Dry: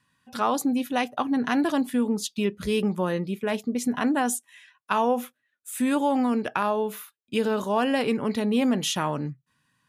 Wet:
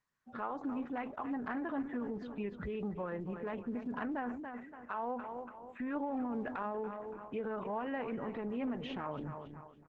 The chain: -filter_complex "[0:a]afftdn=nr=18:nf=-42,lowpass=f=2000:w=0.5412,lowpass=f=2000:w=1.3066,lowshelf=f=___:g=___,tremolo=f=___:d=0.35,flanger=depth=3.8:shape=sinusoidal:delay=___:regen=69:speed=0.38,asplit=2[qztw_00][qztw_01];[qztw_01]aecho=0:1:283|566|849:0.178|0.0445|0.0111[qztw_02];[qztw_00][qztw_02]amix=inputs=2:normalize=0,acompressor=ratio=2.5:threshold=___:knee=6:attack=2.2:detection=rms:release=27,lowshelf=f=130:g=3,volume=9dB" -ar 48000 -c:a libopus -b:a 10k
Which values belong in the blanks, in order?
460, -6, 4.5, 1, -51dB